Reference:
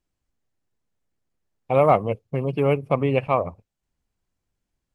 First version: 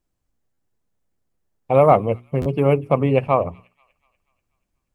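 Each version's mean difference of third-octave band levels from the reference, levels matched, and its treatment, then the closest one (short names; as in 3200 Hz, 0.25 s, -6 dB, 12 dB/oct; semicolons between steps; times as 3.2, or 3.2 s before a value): 1.5 dB: bell 3200 Hz -5 dB 2.6 oct; notches 60/120/180/240/300/360/420 Hz; on a send: thin delay 0.242 s, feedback 48%, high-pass 2500 Hz, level -19.5 dB; on the sum: stuck buffer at 0.53/2.41, samples 512, times 3; gain +4.5 dB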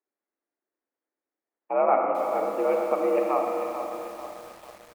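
13.5 dB: echo 0.123 s -10.5 dB; Schroeder reverb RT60 2.9 s, combs from 28 ms, DRR 1.5 dB; mistuned SSB +65 Hz 220–2100 Hz; lo-fi delay 0.443 s, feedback 55%, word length 6-bit, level -9.5 dB; gain -5.5 dB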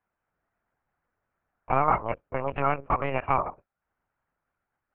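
5.5 dB: spectral limiter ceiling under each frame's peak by 15 dB; compressor 6:1, threshold -18 dBFS, peak gain reduction 7.5 dB; speaker cabinet 270–2100 Hz, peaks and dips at 360 Hz -9 dB, 880 Hz +4 dB, 1400 Hz +8 dB; LPC vocoder at 8 kHz pitch kept; gain -1 dB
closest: first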